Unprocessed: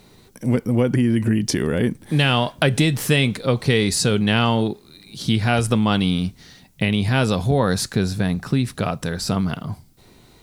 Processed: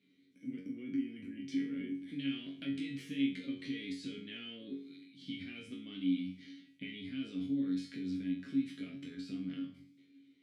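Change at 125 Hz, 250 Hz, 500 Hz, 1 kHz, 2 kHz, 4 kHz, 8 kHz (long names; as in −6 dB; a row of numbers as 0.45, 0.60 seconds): −30.5 dB, −15.0 dB, −30.5 dB, below −40 dB, −24.0 dB, −22.0 dB, below −30 dB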